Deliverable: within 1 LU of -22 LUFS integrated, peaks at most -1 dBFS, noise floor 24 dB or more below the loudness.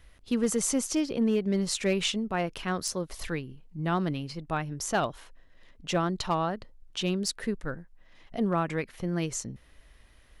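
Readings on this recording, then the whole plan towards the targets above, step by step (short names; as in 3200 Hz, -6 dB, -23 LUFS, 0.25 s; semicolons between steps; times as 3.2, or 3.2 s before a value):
clipped 0.2%; flat tops at -18.5 dBFS; loudness -30.0 LUFS; peak -18.5 dBFS; loudness target -22.0 LUFS
-> clip repair -18.5 dBFS; gain +8 dB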